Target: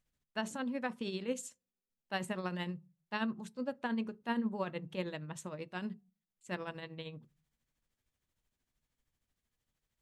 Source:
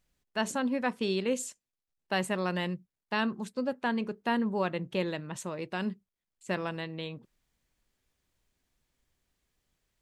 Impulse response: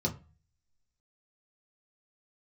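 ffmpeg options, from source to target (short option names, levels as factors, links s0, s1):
-filter_complex "[0:a]tremolo=f=13:d=0.59,asplit=2[s0][s1];[1:a]atrim=start_sample=2205[s2];[s1][s2]afir=irnorm=-1:irlink=0,volume=0.0794[s3];[s0][s3]amix=inputs=2:normalize=0,volume=0.596"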